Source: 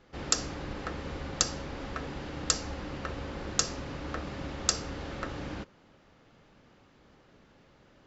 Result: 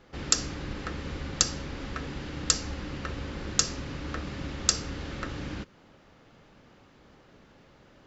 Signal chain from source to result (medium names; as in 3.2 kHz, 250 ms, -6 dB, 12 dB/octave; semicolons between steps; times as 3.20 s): dynamic bell 710 Hz, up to -7 dB, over -52 dBFS, Q 0.87; trim +3.5 dB